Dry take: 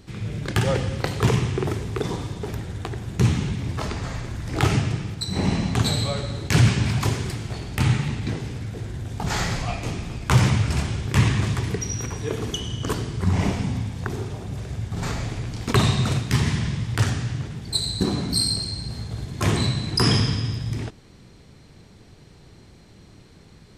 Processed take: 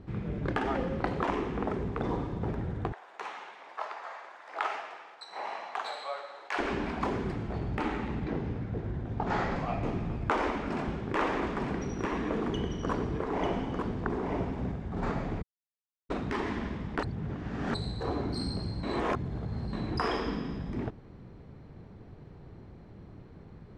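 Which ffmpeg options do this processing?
ffmpeg -i in.wav -filter_complex "[0:a]asettb=1/sr,asplit=3[link_01][link_02][link_03];[link_01]atrim=end=2.924[link_04];[link_02]atrim=start=2.92:end=6.59,asetpts=PTS-STARTPTS,afade=type=in:duration=0.004:curve=qsin,afade=type=out:start_time=3.666:duration=0.004:curve=qsin,highpass=frequency=700:width=0.5412,highpass=frequency=700:width=1.3066[link_05];[link_03]atrim=start=6.586[link_06];[link_04][link_05]acrossfade=duration=0.004:curve1=hsin:curve2=qsin[link_07];[link_07][link_06]acrossfade=duration=0.004:curve1=qsin:curve2=hsin,asettb=1/sr,asplit=3[link_08][link_09][link_10];[link_08]atrim=end=8.244[link_11];[link_09]atrim=start=8.24:end=9.56,asetpts=PTS-STARTPTS,afade=type=in:duration=0.004:curve=qsin,afade=type=out:start_time=1.316:duration=0.004:curve=qsin,lowpass=6800[link_12];[link_10]atrim=start=9.556[link_13];[link_11][link_12]acrossfade=duration=0.004:curve1=hsin:curve2=qsin[link_14];[link_14][link_13]acrossfade=duration=0.004:curve1=qsin:curve2=hsin,asettb=1/sr,asplit=3[link_15][link_16][link_17];[link_15]atrim=end=10.264[link_18];[link_16]atrim=start=10.26:end=14.72,asetpts=PTS-STARTPTS,afade=type=in:duration=0.004:curve=qsin,afade=type=out:start_time=4.456:duration=0.004:curve=qsin,aecho=1:1:895:0.596,atrim=end_sample=196686[link_19];[link_17]atrim=start=14.716[link_20];[link_18][link_19]acrossfade=duration=0.004:curve1=hsin:curve2=qsin[link_21];[link_21][link_20]acrossfade=duration=0.004:curve1=qsin:curve2=hsin,asplit=7[link_22][link_23][link_24][link_25][link_26][link_27][link_28];[link_22]atrim=end=15.42,asetpts=PTS-STARTPTS,afade=type=out:start_time=15.416:duration=0.004:curve=hsin[link_29];[link_23]atrim=start=15.42:end=16.1,asetpts=PTS-STARTPTS,volume=0[link_30];[link_24]atrim=start=16.1:end=17.032,asetpts=PTS-STARTPTS,afade=type=in:duration=0.004:curve=hsin[link_31];[link_25]atrim=start=17.028:end=17.742,asetpts=PTS-STARTPTS,areverse[link_32];[link_26]atrim=start=17.738:end=18.832[link_33];[link_27]atrim=start=18.828:end=19.732,asetpts=PTS-STARTPTS,areverse[link_34];[link_28]atrim=start=19.728[link_35];[link_29][link_30][link_31]concat=n=3:v=0:a=1[link_36];[link_36][link_32]acrossfade=duration=0.004:curve1=hsin:curve2=hsin[link_37];[link_37][link_33]acrossfade=duration=0.004:curve1=hsin:curve2=hsin[link_38];[link_38][link_34]acrossfade=duration=0.004:curve1=hsin:curve2=hsin[link_39];[link_39][link_35]acrossfade=duration=0.004:curve1=hsin:curve2=hsin,lowpass=1200,aemphasis=mode=production:type=50kf,afftfilt=real='re*lt(hypot(re,im),0.316)':imag='im*lt(hypot(re,im),0.316)':win_size=1024:overlap=0.75" out.wav

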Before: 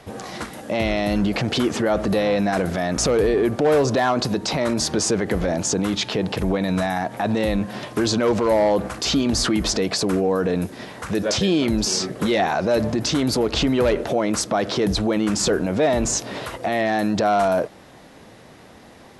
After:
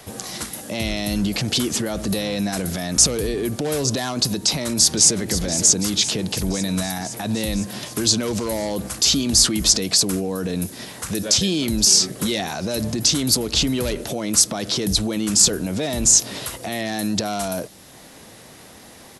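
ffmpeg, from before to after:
ffmpeg -i in.wav -filter_complex "[0:a]asplit=2[link_01][link_02];[link_02]afade=type=in:start_time=4.46:duration=0.01,afade=type=out:start_time=5.2:duration=0.01,aecho=0:1:510|1020|1530|2040|2550|3060|3570|4080|4590|5100:0.298538|0.208977|0.146284|0.102399|0.071679|0.0501753|0.0351227|0.0245859|0.0172101|0.0120471[link_03];[link_01][link_03]amix=inputs=2:normalize=0,aemphasis=mode=production:type=75kf,acrossover=split=290|3000[link_04][link_05][link_06];[link_05]acompressor=threshold=-45dB:ratio=1.5[link_07];[link_04][link_07][link_06]amix=inputs=3:normalize=0" out.wav

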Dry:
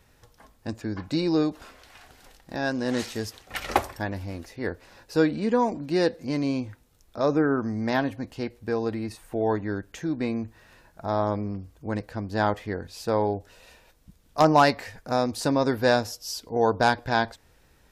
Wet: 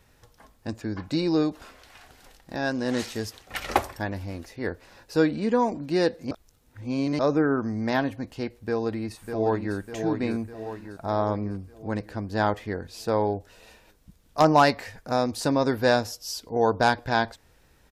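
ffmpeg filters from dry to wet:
ffmpeg -i in.wav -filter_complex "[0:a]asplit=2[link_01][link_02];[link_02]afade=type=in:start_time=8.61:duration=0.01,afade=type=out:start_time=9.76:duration=0.01,aecho=0:1:600|1200|1800|2400|3000|3600|4200:0.473151|0.260233|0.143128|0.0787205|0.0432963|0.023813|0.0130971[link_03];[link_01][link_03]amix=inputs=2:normalize=0,asplit=3[link_04][link_05][link_06];[link_04]atrim=end=6.312[link_07];[link_05]atrim=start=6.308:end=7.192,asetpts=PTS-STARTPTS,areverse[link_08];[link_06]atrim=start=7.188[link_09];[link_07][link_08]acrossfade=duration=0.004:curve1=hsin:curve2=hsin[link_10];[link_10][link_09]acrossfade=duration=0.004:curve1=hsin:curve2=hsin" out.wav

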